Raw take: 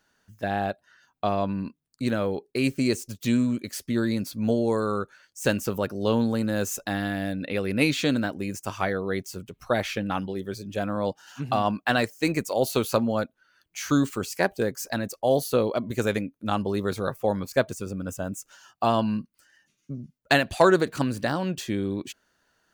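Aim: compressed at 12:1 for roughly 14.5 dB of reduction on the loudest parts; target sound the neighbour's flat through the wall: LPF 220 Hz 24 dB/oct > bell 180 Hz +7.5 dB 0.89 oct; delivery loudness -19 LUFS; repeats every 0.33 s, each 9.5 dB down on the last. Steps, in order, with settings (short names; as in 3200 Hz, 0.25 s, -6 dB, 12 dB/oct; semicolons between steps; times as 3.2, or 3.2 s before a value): compressor 12:1, threshold -28 dBFS; LPF 220 Hz 24 dB/oct; bell 180 Hz +7.5 dB 0.89 oct; feedback echo 0.33 s, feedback 33%, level -9.5 dB; gain +16 dB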